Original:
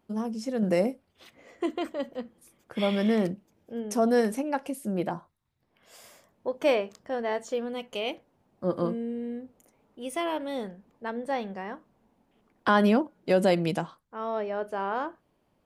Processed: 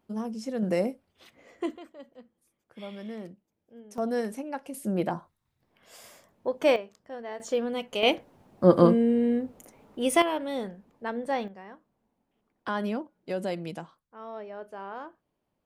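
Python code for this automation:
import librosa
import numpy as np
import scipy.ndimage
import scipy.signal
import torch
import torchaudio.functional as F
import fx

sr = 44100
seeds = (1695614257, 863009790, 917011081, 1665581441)

y = fx.gain(x, sr, db=fx.steps((0.0, -2.0), (1.77, -14.5), (3.98, -6.0), (4.74, 1.5), (6.76, -8.5), (7.4, 3.0), (8.03, 10.0), (10.22, 1.0), (11.48, -9.0)))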